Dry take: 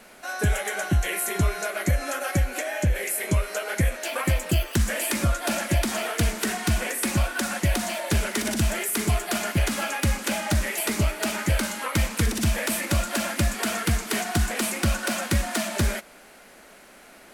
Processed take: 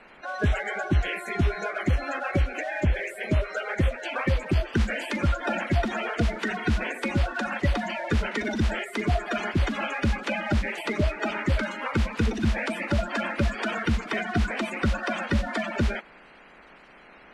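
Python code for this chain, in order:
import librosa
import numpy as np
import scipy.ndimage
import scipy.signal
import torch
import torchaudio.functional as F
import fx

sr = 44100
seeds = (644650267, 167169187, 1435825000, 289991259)

y = fx.spec_quant(x, sr, step_db=30)
y = scipy.signal.sosfilt(scipy.signal.butter(2, 3100.0, 'lowpass', fs=sr, output='sos'), y)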